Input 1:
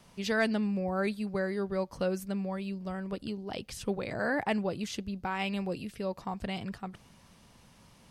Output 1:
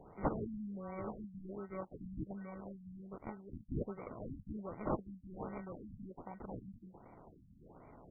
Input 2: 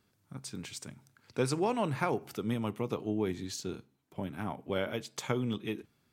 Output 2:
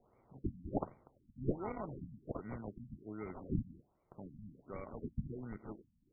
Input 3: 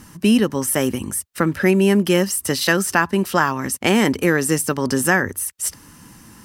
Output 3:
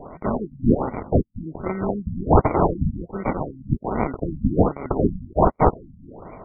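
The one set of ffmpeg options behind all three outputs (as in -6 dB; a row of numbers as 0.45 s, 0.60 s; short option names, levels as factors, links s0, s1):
-af "aexciter=amount=8.6:drive=8.2:freq=3700,acrusher=samples=26:mix=1:aa=0.000001,afftfilt=real='re*lt(b*sr/1024,250*pow(2400/250,0.5+0.5*sin(2*PI*1.3*pts/sr)))':imag='im*lt(b*sr/1024,250*pow(2400/250,0.5+0.5*sin(2*PI*1.3*pts/sr)))':win_size=1024:overlap=0.75,volume=0.224"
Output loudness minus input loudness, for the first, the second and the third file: -11.5 LU, -9.5 LU, -4.5 LU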